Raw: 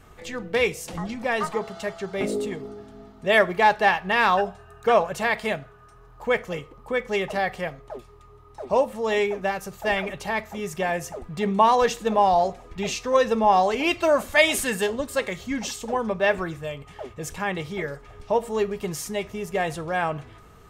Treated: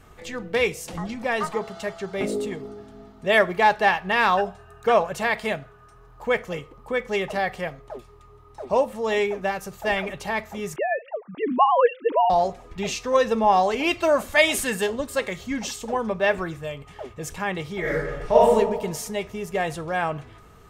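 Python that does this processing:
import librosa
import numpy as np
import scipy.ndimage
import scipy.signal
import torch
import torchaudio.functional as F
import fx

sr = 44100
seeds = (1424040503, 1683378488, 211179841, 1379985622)

y = fx.sine_speech(x, sr, at=(10.76, 12.3))
y = fx.reverb_throw(y, sr, start_s=17.8, length_s=0.74, rt60_s=1.1, drr_db=-7.5)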